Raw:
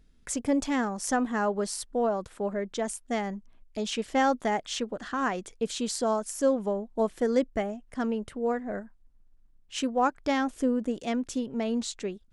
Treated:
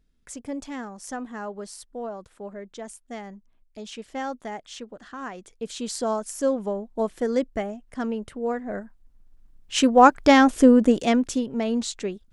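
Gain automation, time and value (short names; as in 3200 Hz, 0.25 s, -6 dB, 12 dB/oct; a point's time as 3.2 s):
5.33 s -7 dB
5.98 s +1 dB
8.52 s +1 dB
10.09 s +12 dB
10.92 s +12 dB
11.48 s +4 dB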